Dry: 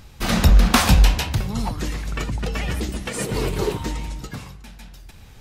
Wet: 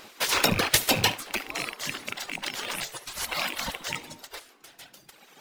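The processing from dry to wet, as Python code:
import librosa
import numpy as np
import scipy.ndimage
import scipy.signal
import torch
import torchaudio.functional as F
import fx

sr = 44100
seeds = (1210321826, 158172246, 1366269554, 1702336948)

p1 = fx.rattle_buzz(x, sr, strikes_db=-22.0, level_db=-17.0)
p2 = fx.dereverb_blind(p1, sr, rt60_s=1.7)
p3 = fx.spec_gate(p2, sr, threshold_db=-20, keep='weak')
p4 = fx.sample_hold(p3, sr, seeds[0], rate_hz=12000.0, jitter_pct=0)
p5 = p3 + (p4 * 10.0 ** (-8.5 / 20.0))
p6 = p5 + 10.0 ** (-21.0 / 20.0) * np.pad(p5, (int(73 * sr / 1000.0), 0))[:len(p5)]
y = p6 * 10.0 ** (4.5 / 20.0)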